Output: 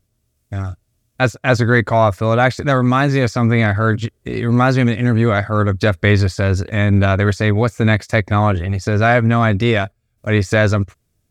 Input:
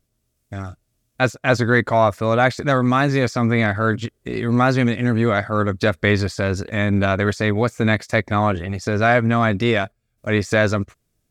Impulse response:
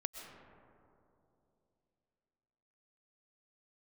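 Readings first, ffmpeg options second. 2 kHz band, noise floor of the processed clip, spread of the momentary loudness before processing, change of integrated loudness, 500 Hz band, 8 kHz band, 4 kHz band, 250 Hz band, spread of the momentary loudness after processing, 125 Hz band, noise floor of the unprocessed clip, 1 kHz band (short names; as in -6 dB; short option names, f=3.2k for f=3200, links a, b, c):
+2.0 dB, -67 dBFS, 9 LU, +3.5 dB, +2.0 dB, +2.0 dB, +2.0 dB, +2.5 dB, 8 LU, +6.5 dB, -71 dBFS, +2.0 dB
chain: -af "equalizer=f=88:t=o:w=0.87:g=7,volume=2dB"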